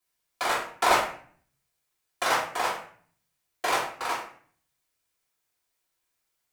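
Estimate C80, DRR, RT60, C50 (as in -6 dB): 9.5 dB, -7.0 dB, 0.50 s, 4.5 dB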